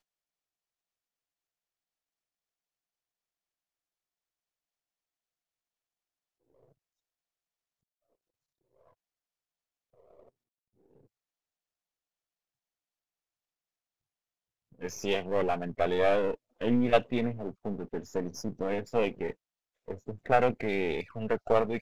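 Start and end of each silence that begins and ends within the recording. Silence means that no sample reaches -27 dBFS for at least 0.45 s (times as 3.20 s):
19.31–19.91 s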